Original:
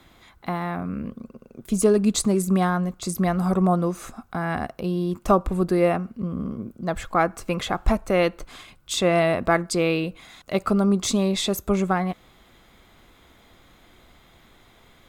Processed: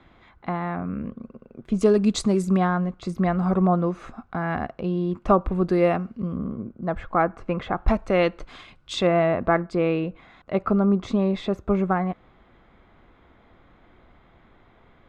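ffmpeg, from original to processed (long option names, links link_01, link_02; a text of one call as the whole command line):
ffmpeg -i in.wav -af "asetnsamples=nb_out_samples=441:pad=0,asendcmd='1.81 lowpass f 5300;2.57 lowpass f 2700;5.64 lowpass f 4500;6.37 lowpass f 1800;7.88 lowpass f 4000;9.07 lowpass f 1800',lowpass=2400" out.wav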